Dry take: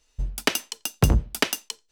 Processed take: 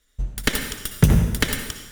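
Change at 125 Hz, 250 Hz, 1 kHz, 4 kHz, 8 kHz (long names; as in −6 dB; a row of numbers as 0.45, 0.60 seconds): +5.0, +6.0, −1.5, 0.0, +0.5 decibels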